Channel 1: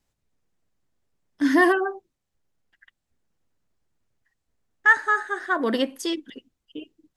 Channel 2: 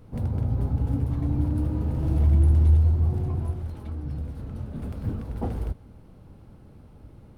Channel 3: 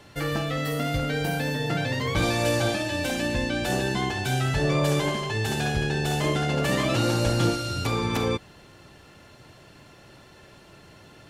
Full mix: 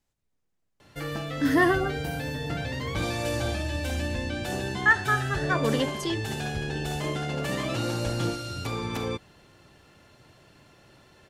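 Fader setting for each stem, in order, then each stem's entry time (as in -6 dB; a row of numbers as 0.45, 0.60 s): -3.5, -15.0, -5.5 dB; 0.00, 1.25, 0.80 s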